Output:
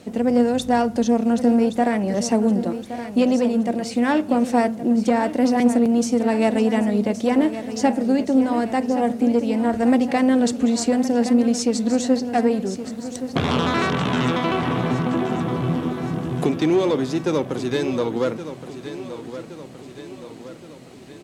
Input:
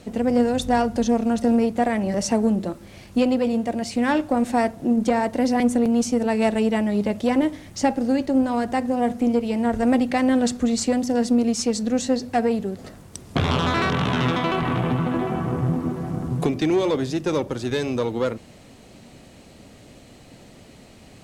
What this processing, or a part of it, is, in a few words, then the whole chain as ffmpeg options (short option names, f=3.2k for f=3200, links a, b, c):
filter by subtraction: -filter_complex "[0:a]aecho=1:1:1120|2240|3360|4480|5600|6720:0.251|0.136|0.0732|0.0396|0.0214|0.0115,asplit=2[a][b];[b]lowpass=230,volume=-1[c];[a][c]amix=inputs=2:normalize=0"